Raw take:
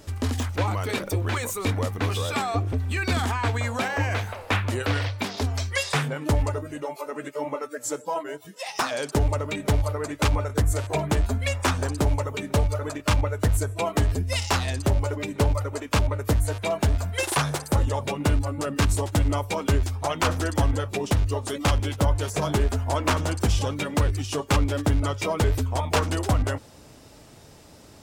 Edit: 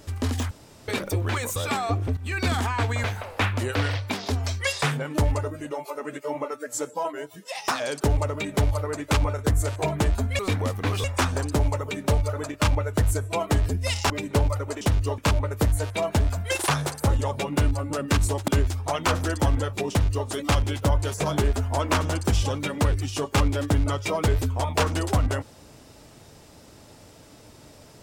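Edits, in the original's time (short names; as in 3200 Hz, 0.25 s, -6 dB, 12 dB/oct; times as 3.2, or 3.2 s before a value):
0.51–0.88 room tone
1.56–2.21 move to 11.5
2.82–3.12 fade in equal-power, from -12.5 dB
3.69–4.15 cut
14.56–15.15 cut
19.16–19.64 cut
21.06–21.43 copy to 15.86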